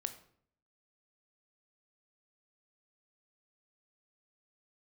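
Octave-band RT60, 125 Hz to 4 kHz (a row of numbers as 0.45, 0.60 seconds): 0.75, 0.75, 0.65, 0.55, 0.50, 0.40 seconds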